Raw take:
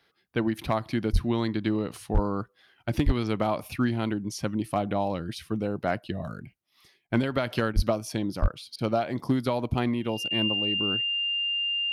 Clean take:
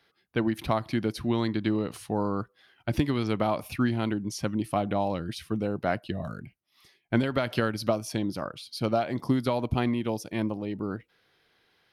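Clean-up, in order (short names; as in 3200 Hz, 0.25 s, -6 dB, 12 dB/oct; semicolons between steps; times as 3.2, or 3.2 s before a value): clip repair -14.5 dBFS; notch 2800 Hz, Q 30; de-plosive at 1.12/2.13/3.05/7.75/8.41; interpolate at 7.07/7.73/8.76/10.28, 24 ms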